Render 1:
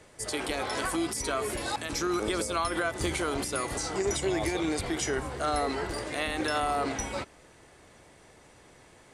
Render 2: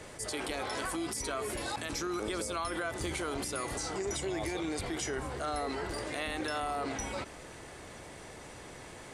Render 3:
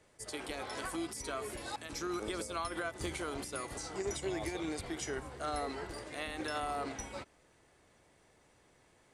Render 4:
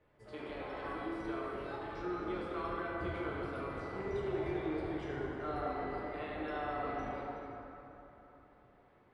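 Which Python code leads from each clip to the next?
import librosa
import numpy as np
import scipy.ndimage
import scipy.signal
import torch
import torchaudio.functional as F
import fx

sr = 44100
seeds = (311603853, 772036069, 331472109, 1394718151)

y1 = fx.env_flatten(x, sr, amount_pct=50)
y1 = y1 * librosa.db_to_amplitude(-7.5)
y2 = fx.upward_expand(y1, sr, threshold_db=-45.0, expansion=2.5)
y3 = fx.air_absorb(y2, sr, metres=430.0)
y3 = fx.rev_plate(y3, sr, seeds[0], rt60_s=3.6, hf_ratio=0.55, predelay_ms=0, drr_db=-5.0)
y3 = y3 * librosa.db_to_amplitude(-4.5)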